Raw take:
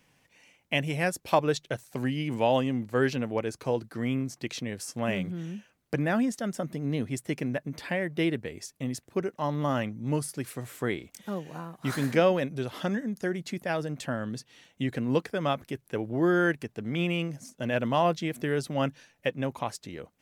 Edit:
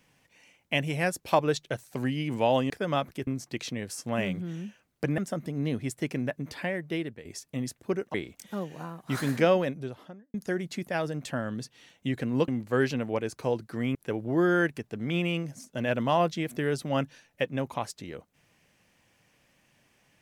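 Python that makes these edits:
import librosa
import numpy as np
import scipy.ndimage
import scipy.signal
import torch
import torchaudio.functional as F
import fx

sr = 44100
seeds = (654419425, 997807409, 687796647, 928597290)

y = fx.studio_fade_out(x, sr, start_s=12.27, length_s=0.82)
y = fx.edit(y, sr, fx.swap(start_s=2.7, length_s=1.47, other_s=15.23, other_length_s=0.57),
    fx.cut(start_s=6.08, length_s=0.37),
    fx.fade_out_to(start_s=7.78, length_s=0.74, floor_db=-10.0),
    fx.cut(start_s=9.41, length_s=1.48), tone=tone)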